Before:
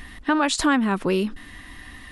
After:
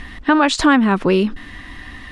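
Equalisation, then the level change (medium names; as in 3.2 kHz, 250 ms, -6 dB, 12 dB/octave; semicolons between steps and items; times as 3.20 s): distance through air 74 m; +7.0 dB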